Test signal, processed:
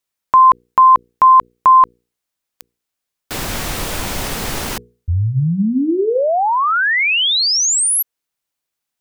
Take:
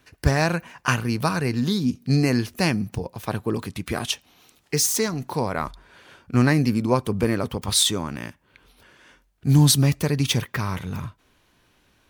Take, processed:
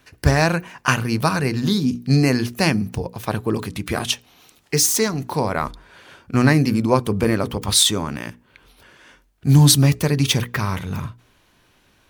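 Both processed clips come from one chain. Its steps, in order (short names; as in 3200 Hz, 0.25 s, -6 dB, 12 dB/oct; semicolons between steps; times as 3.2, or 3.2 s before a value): notches 60/120/180/240/300/360/420/480 Hz; gain +4 dB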